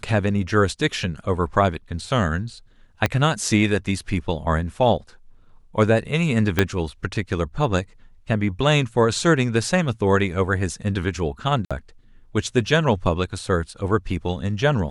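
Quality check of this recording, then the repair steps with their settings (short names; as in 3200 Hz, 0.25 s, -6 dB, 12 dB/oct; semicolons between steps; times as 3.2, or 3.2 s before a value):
3.06 pop -6 dBFS
6.59 pop -3 dBFS
11.65–11.71 gap 56 ms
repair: de-click; interpolate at 11.65, 56 ms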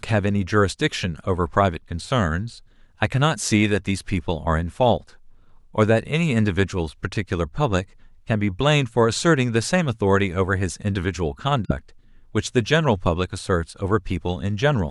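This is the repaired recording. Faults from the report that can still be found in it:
3.06 pop
6.59 pop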